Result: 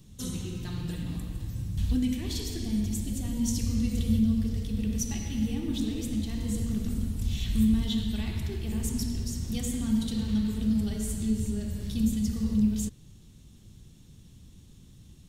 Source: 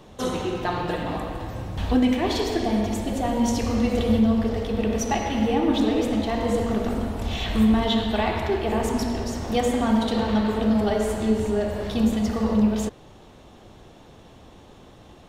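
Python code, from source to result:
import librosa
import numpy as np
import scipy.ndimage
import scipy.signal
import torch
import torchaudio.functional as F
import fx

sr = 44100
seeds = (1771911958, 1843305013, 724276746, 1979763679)

y = fx.curve_eq(x, sr, hz=(170.0, 690.0, 8700.0), db=(0, -28, 3))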